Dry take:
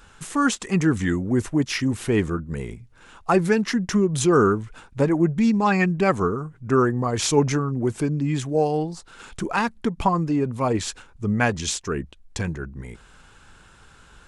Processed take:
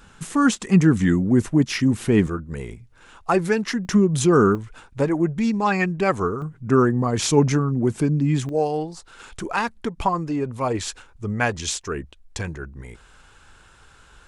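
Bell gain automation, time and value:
bell 190 Hz 1.2 oct
+7 dB
from 2.27 s -3 dB
from 3.85 s +4 dB
from 4.55 s -3 dB
from 6.42 s +5.5 dB
from 8.49 s -5.5 dB

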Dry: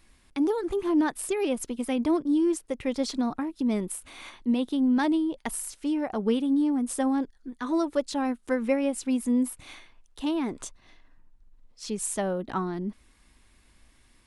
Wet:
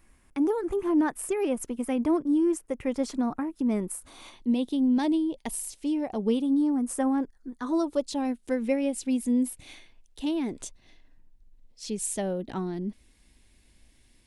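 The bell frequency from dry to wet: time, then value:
bell -11 dB 0.93 oct
3.84 s 4000 Hz
4.38 s 1400 Hz
6.22 s 1400 Hz
7.08 s 4600 Hz
8.33 s 1200 Hz

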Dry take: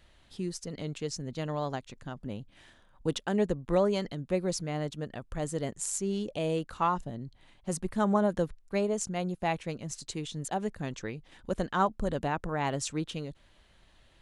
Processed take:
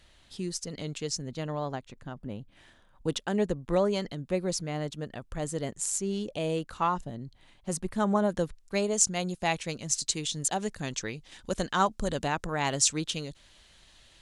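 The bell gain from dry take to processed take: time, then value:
bell 6500 Hz 2.4 oct
1.13 s +6.5 dB
1.6 s -4 dB
2.37 s -4 dB
3.15 s +3 dB
8.12 s +3 dB
9 s +13 dB

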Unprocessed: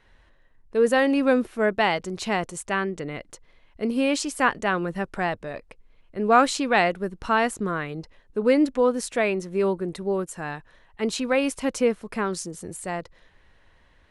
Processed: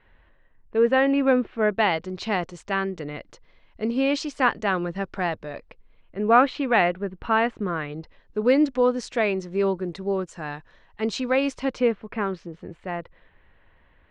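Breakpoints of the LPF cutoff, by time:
LPF 24 dB/oct
1.39 s 3100 Hz
2.29 s 5400 Hz
5.53 s 5400 Hz
6.24 s 3200 Hz
7.7 s 3200 Hz
8.41 s 6100 Hz
11.52 s 6100 Hz
12.03 s 3000 Hz

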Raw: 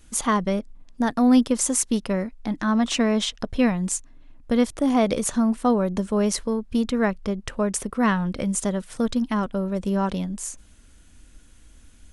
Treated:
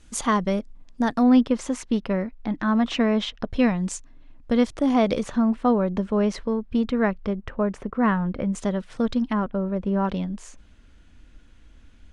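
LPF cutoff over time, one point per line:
7600 Hz
from 1.23 s 3200 Hz
from 3.52 s 5600 Hz
from 5.23 s 3100 Hz
from 7.33 s 1900 Hz
from 8.55 s 4000 Hz
from 9.33 s 2000 Hz
from 10.05 s 3600 Hz

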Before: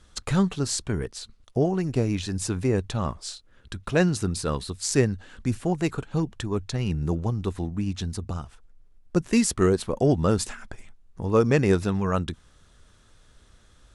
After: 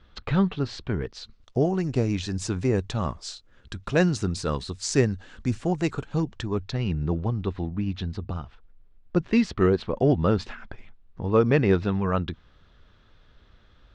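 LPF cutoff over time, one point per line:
LPF 24 dB/oct
0.73 s 3800 Hz
1.66 s 7300 Hz
6.14 s 7300 Hz
7.03 s 4100 Hz

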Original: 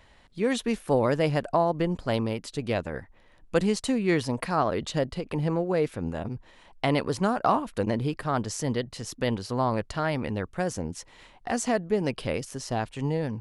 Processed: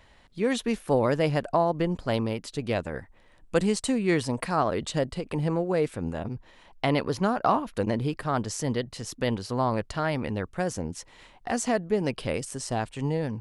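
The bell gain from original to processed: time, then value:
bell 8300 Hz 0.28 oct
-0.5 dB
from 2.73 s +7 dB
from 6.14 s -4 dB
from 6.9 s -11 dB
from 7.75 s +1 dB
from 12.28 s +10 dB
from 12.9 s +3 dB

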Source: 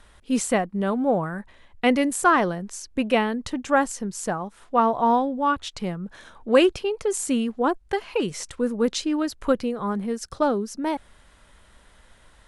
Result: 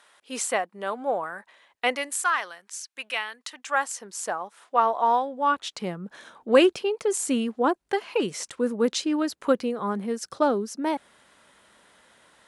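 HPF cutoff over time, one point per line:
1.86 s 610 Hz
2.28 s 1500 Hz
3.45 s 1500 Hz
4.15 s 560 Hz
5.25 s 560 Hz
5.88 s 210 Hz

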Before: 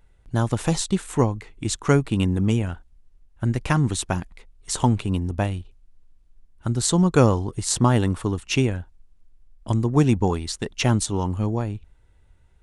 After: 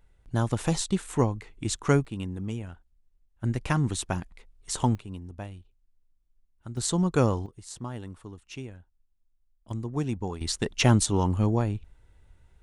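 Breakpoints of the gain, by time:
-4 dB
from 2.05 s -12.5 dB
from 3.44 s -5 dB
from 4.95 s -15 dB
from 6.77 s -6.5 dB
from 7.46 s -18.5 dB
from 9.71 s -11.5 dB
from 10.41 s 0 dB

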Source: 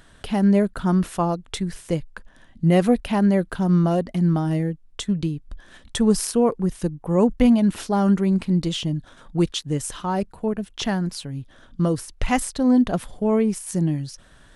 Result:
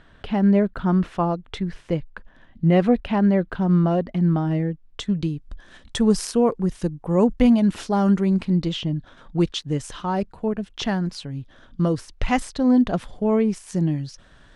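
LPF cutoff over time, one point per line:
4.66 s 3200 Hz
5.33 s 7600 Hz
8.28 s 7600 Hz
8.89 s 3400 Hz
9.37 s 5700 Hz

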